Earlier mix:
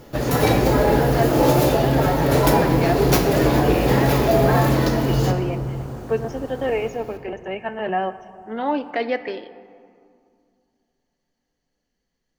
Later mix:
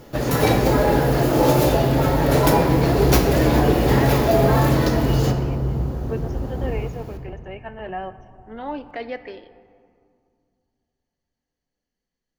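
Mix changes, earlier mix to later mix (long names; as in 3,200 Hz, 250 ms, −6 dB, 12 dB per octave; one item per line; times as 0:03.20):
speech −7.5 dB
second sound: add spectral tilt −4 dB per octave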